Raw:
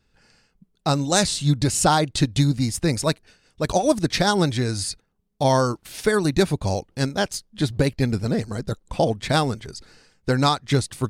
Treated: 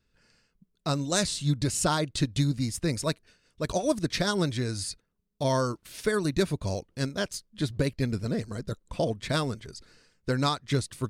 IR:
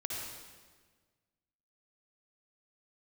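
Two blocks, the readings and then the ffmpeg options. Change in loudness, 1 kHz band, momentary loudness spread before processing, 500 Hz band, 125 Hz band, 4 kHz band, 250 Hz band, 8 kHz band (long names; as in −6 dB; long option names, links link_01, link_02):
−7.0 dB, −9.5 dB, 10 LU, −7.0 dB, −6.5 dB, −6.5 dB, −6.5 dB, −6.5 dB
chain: -af "bandreject=frequency=800:width=5.1,volume=-6.5dB"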